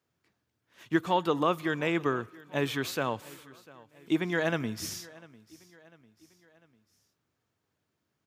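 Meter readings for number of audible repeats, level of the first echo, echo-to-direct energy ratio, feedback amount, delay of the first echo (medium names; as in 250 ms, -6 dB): 3, -22.0 dB, -21.0 dB, 50%, 698 ms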